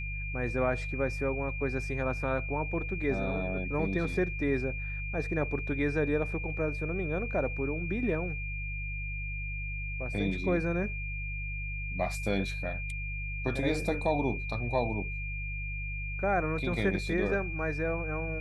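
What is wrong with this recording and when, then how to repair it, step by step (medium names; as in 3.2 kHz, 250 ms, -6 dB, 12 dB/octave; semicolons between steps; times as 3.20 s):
hum 50 Hz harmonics 3 -37 dBFS
whine 2.4 kHz -38 dBFS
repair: band-stop 2.4 kHz, Q 30; de-hum 50 Hz, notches 3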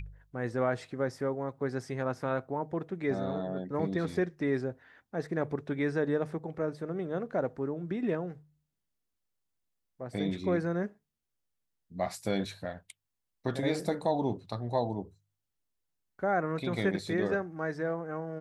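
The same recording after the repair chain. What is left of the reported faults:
nothing left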